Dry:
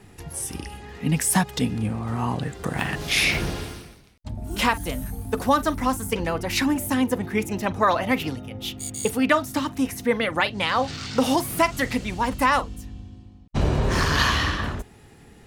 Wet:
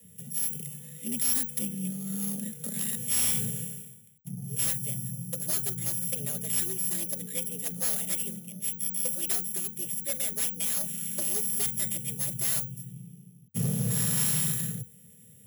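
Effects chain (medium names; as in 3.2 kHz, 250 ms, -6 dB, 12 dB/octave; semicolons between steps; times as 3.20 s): sorted samples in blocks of 8 samples; FFT filter 130 Hz 0 dB, 230 Hz -25 dB, 360 Hz -7 dB, 960 Hz -27 dB, 1.6 kHz -11 dB, 3.2 kHz -2 dB, 5 kHz -17 dB, 7.7 kHz +13 dB; frequency shift +80 Hz; overload inside the chain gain 17.5 dB; trim -5 dB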